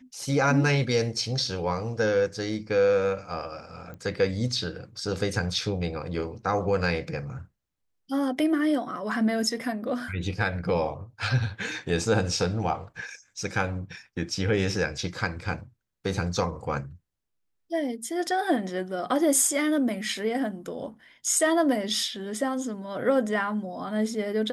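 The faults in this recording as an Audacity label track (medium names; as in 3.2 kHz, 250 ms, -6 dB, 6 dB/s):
3.940000	3.940000	pop -29 dBFS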